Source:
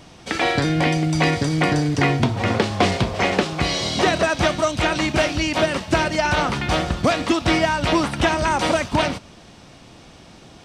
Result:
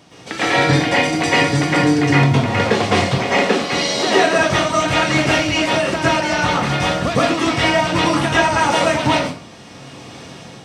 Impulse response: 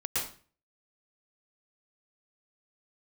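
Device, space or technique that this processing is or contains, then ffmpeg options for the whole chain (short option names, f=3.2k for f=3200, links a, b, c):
far laptop microphone: -filter_complex "[0:a]asettb=1/sr,asplit=3[a][b][c];[a]atrim=end=3.044[d];[b]atrim=start=3.04:end=4.37,asetpts=PTS-STARTPTS,afade=t=in:d=0.004:c=qsin,afade=t=out:st=1.326:d=0.004:c=qsin,lowshelf=f=170:t=q:w=1.5:g=-8.5[e];[c]atrim=start=4.366[f];[d][e]acrossfade=d=0.004:c1=hsin:c2=qsin[g];[g][f]acrossfade=d=0.004:c1=qsin:c2=hsin[h];[1:a]atrim=start_sample=2205[i];[h][i]afir=irnorm=-1:irlink=0,highpass=120,dynaudnorm=f=330:g=5:m=11.5dB,volume=-1dB"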